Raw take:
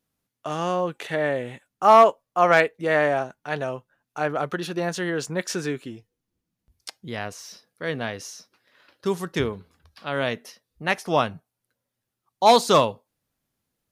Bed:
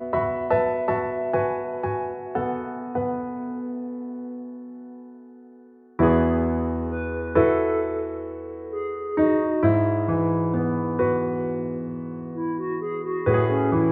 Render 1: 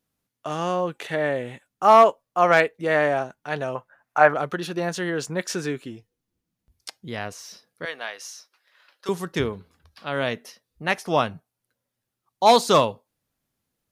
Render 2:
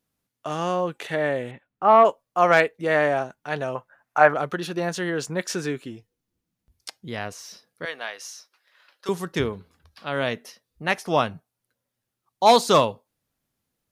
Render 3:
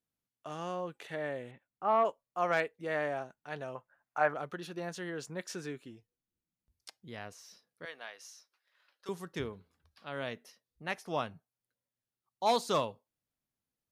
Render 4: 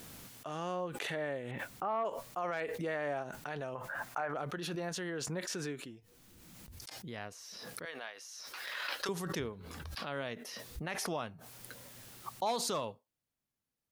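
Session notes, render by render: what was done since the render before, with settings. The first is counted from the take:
3.75–4.34 band shelf 1100 Hz +11.5 dB 2.3 oct; 7.85–9.09 HPF 770 Hz
1.51–2.05 air absorption 380 m
gain -13 dB
limiter -26.5 dBFS, peak gain reduction 11.5 dB; backwards sustainer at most 21 dB/s

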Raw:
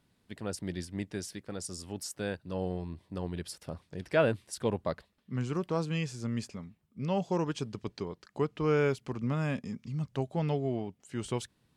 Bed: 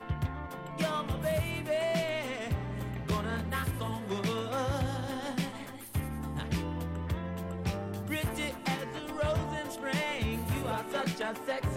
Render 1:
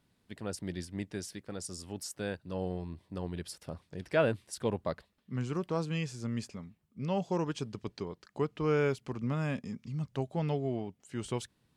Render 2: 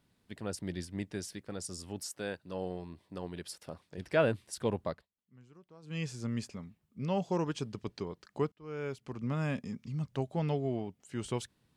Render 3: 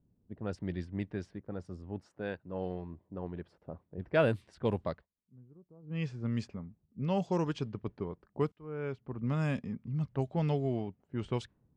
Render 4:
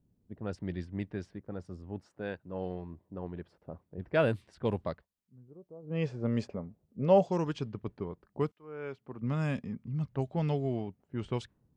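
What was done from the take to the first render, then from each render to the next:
gain -1.5 dB
2.05–3.98 low shelf 150 Hz -11 dB; 4.84–6.05 dip -23.5 dB, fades 0.23 s; 8.52–9.43 fade in
low-pass opened by the level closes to 410 Hz, open at -27.5 dBFS; low shelf 120 Hz +6 dB
5.48–7.28 bell 560 Hz +13 dB 1.4 oct; 8.5–9.21 HPF 520 Hz -> 230 Hz 6 dB/oct

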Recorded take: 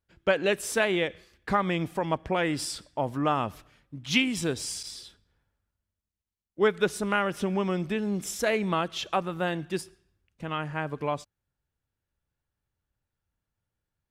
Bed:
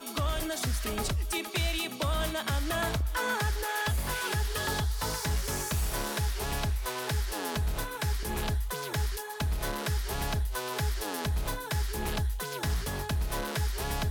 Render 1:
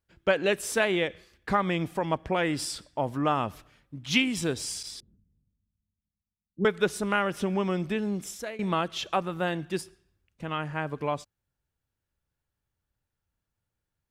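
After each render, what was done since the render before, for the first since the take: 5–6.65 synth low-pass 200 Hz, resonance Q 2.3; 8.05–8.59 fade out, to -19 dB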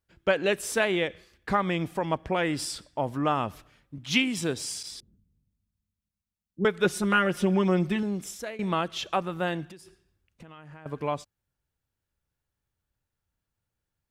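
3.98–4.91 HPF 100 Hz; 6.84–8.03 comb 5.6 ms, depth 85%; 9.65–10.86 compressor 20:1, threshold -42 dBFS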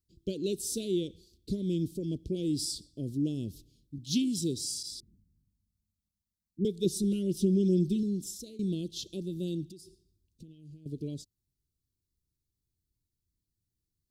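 elliptic band-stop 360–4100 Hz, stop band 50 dB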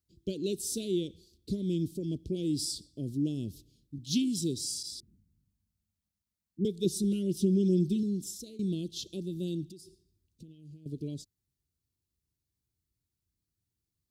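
HPF 48 Hz; dynamic EQ 500 Hz, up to -3 dB, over -50 dBFS, Q 3.6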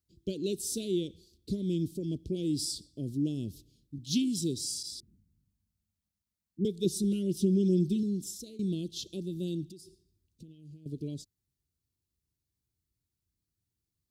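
nothing audible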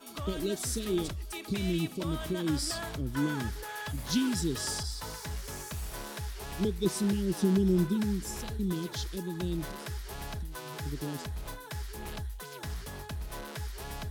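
add bed -8 dB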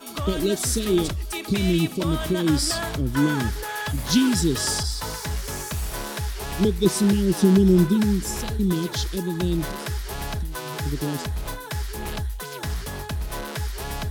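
gain +9.5 dB

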